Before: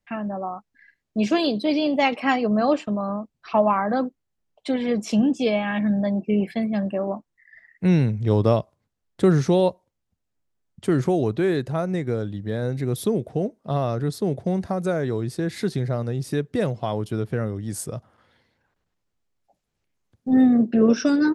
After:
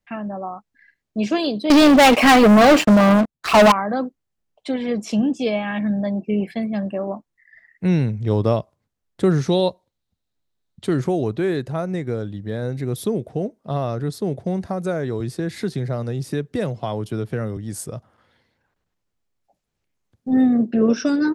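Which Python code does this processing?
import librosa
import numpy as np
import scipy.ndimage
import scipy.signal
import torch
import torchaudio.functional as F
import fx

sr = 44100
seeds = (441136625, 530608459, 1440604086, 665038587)

y = fx.leveller(x, sr, passes=5, at=(1.7, 3.72))
y = fx.peak_eq(y, sr, hz=3900.0, db=11.0, octaves=0.38, at=(9.48, 10.94))
y = fx.band_squash(y, sr, depth_pct=40, at=(15.2, 17.57))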